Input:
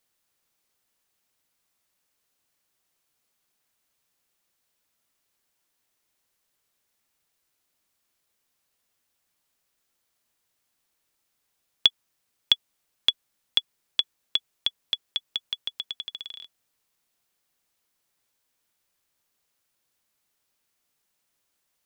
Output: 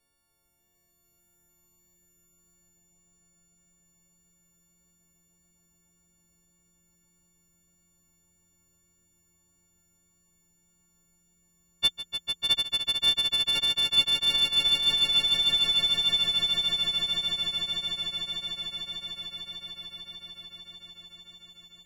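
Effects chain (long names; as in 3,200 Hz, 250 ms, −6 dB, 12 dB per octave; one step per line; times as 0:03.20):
every partial snapped to a pitch grid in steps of 4 semitones
spectral tilt −4 dB per octave
soft clipping −16 dBFS, distortion −15 dB
echo that builds up and dies away 149 ms, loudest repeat 8, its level −4 dB
pitch vibrato 1.7 Hz 6.1 cents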